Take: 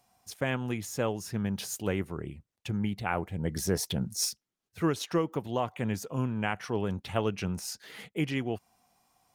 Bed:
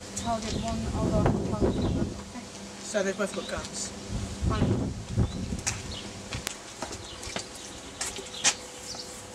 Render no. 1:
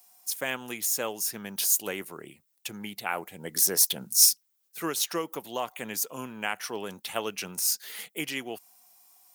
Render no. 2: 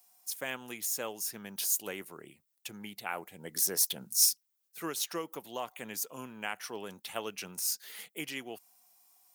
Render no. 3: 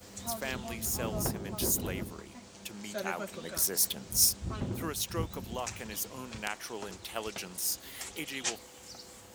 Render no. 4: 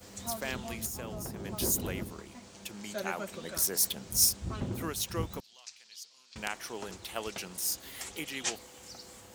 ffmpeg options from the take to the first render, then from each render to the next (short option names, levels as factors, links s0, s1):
-af "highpass=160,aemphasis=mode=production:type=riaa"
-af "volume=0.501"
-filter_complex "[1:a]volume=0.316[s0];[0:a][s0]amix=inputs=2:normalize=0"
-filter_complex "[0:a]asettb=1/sr,asplit=3[s0][s1][s2];[s0]atrim=end=0.864[s3];[s1]atrim=start=0.86:end=1.43,asetpts=PTS-STARTPTS,afade=t=in:d=0.004:c=qsin,afade=t=out:st=0.566:d=0.004:c=qsin,acompressor=threshold=0.0178:ratio=6:attack=3.2:release=140:knee=1:detection=peak[s4];[s2]atrim=start=1.426[s5];[s3][s4]acrossfade=d=0.004:c1=hsin:c2=qsin[s6];[s6][s5]acrossfade=d=0.004:c1=qsin:c2=hsin,asettb=1/sr,asplit=3[s7][s8][s9];[s7]atrim=end=5.404[s10];[s8]atrim=start=5.4:end=6.36,asetpts=PTS-STARTPTS,afade=t=in:d=0.004:c=qsin,afade=t=out:st=0.956:d=0.004:c=qsin,bandpass=f=4600:t=q:w=3.3[s11];[s9]atrim=start=6.356[s12];[s10][s11]acrossfade=d=0.004:c1=hsin:c2=qsin[s13];[s13][s12]acrossfade=d=0.004:c1=qsin:c2=hsin"